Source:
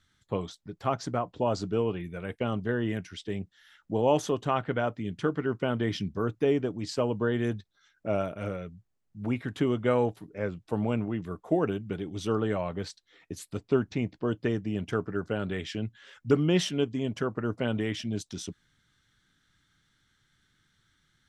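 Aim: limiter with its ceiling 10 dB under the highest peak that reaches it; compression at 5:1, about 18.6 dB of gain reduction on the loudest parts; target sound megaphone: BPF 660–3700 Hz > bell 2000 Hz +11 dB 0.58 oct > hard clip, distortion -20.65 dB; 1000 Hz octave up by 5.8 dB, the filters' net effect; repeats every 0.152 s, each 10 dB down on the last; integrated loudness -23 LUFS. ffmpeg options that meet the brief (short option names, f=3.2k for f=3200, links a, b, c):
-af "equalizer=f=1k:t=o:g=7.5,acompressor=threshold=-38dB:ratio=5,alimiter=level_in=9dB:limit=-24dB:level=0:latency=1,volume=-9dB,highpass=660,lowpass=3.7k,equalizer=f=2k:t=o:w=0.58:g=11,aecho=1:1:152|304|456|608:0.316|0.101|0.0324|0.0104,asoftclip=type=hard:threshold=-38dB,volume=25.5dB"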